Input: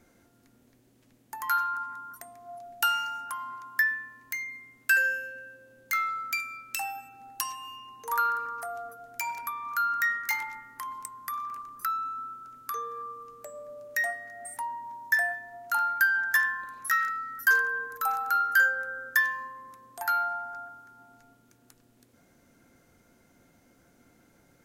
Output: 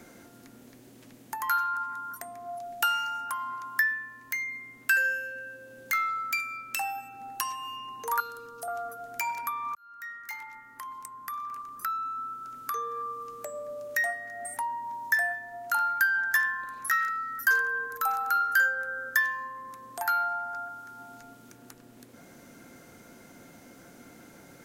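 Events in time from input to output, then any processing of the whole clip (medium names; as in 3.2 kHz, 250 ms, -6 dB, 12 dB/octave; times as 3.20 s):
8.20–8.68 s: high-order bell 1.4 kHz -15.5 dB
9.75–13.07 s: fade in
whole clip: three bands compressed up and down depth 40%; trim +1.5 dB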